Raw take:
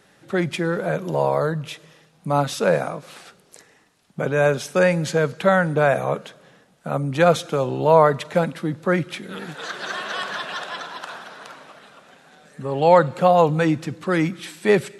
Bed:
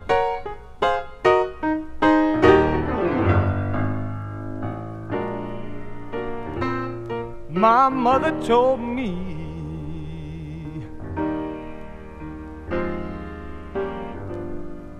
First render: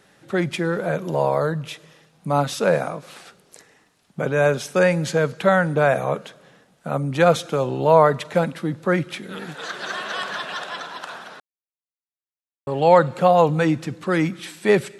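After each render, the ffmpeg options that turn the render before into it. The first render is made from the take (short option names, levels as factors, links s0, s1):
-filter_complex "[0:a]asplit=3[s0][s1][s2];[s0]atrim=end=11.4,asetpts=PTS-STARTPTS,afade=t=out:st=11.396:d=0.004:c=hsin[s3];[s1]atrim=start=11.4:end=12.67,asetpts=PTS-STARTPTS,volume=0[s4];[s2]atrim=start=12.67,asetpts=PTS-STARTPTS,afade=t=in:d=0.004:c=hsin[s5];[s3][s4][s5]concat=n=3:v=0:a=1"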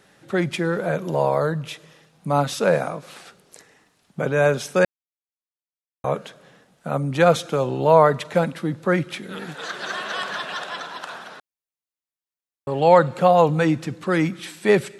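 -filter_complex "[0:a]asplit=3[s0][s1][s2];[s0]atrim=end=4.85,asetpts=PTS-STARTPTS,afade=t=out:st=4.846:d=0.004:c=hsin[s3];[s1]atrim=start=4.85:end=6.04,asetpts=PTS-STARTPTS,volume=0[s4];[s2]atrim=start=6.04,asetpts=PTS-STARTPTS,afade=t=in:d=0.004:c=hsin[s5];[s3][s4][s5]concat=n=3:v=0:a=1"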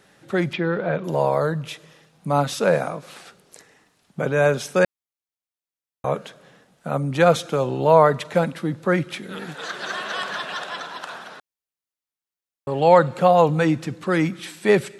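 -filter_complex "[0:a]asettb=1/sr,asplit=3[s0][s1][s2];[s0]atrim=end=0.534[s3];[s1]atrim=start=0.53:end=1.04,asetpts=PTS-STARTPTS,afade=t=in:d=0.004:c=qsin,afade=t=out:st=0.506:d=0.004:c=qsin,lowpass=f=4000:w=0.5412,lowpass=f=4000:w=1.3066[s4];[s2]atrim=start=1.036[s5];[s3][s4]acrossfade=d=0.004:c1=hsin:c2=qsin[s6];[s6][s5]acrossfade=d=0.004:c1=qsin:c2=hsin"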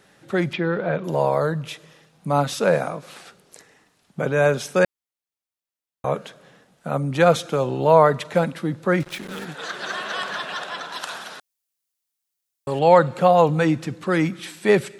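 -filter_complex "[0:a]asettb=1/sr,asplit=3[s0][s1][s2];[s0]atrim=end=9.004[s3];[s1]atrim=start=9:end=9.45,asetpts=PTS-STARTPTS,afade=t=in:d=0.004:c=qsin,afade=t=out:st=0.446:d=0.004:c=qsin,acrusher=bits=5:mix=0:aa=0.5[s4];[s2]atrim=start=9.446[s5];[s3][s4]acrossfade=d=0.004:c1=hsin:c2=qsin[s6];[s6][s5]acrossfade=d=0.004:c1=qsin:c2=hsin,asettb=1/sr,asplit=3[s7][s8][s9];[s7]atrim=end=10.924[s10];[s8]atrim=start=10.92:end=12.79,asetpts=PTS-STARTPTS,afade=t=in:d=0.004:c=qsin,afade=t=out:st=1.866:d=0.004:c=qsin,highshelf=f=3400:g=12[s11];[s9]atrim=start=12.786[s12];[s10][s11]acrossfade=d=0.004:c1=hsin:c2=qsin[s13];[s13][s12]acrossfade=d=0.004:c1=qsin:c2=hsin"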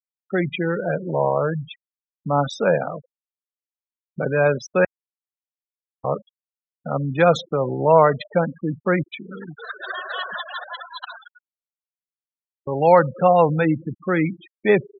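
-af "afftfilt=real='re*gte(hypot(re,im),0.0708)':imag='im*gte(hypot(re,im),0.0708)':win_size=1024:overlap=0.75,highshelf=f=4600:g=6.5"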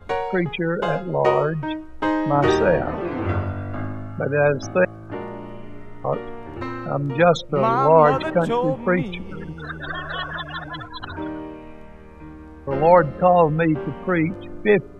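-filter_complex "[1:a]volume=0.562[s0];[0:a][s0]amix=inputs=2:normalize=0"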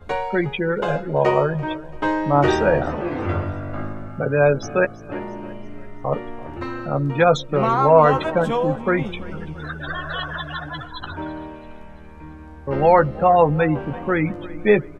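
-filter_complex "[0:a]asplit=2[s0][s1];[s1]adelay=14,volume=0.398[s2];[s0][s2]amix=inputs=2:normalize=0,aecho=1:1:337|674|1011|1348:0.106|0.0508|0.0244|0.0117"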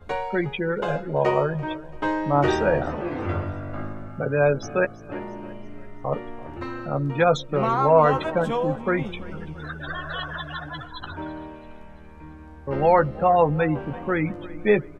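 -af "volume=0.668"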